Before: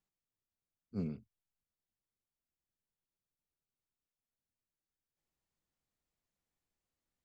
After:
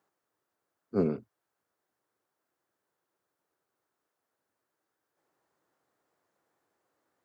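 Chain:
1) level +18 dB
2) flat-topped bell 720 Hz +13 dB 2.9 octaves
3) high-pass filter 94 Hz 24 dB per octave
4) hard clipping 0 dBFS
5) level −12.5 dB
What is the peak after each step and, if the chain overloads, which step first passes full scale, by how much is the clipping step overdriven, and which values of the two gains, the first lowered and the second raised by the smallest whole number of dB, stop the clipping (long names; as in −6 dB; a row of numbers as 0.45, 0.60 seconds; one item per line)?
−10.0, −3.0, −3.5, −3.5, −16.0 dBFS
no step passes full scale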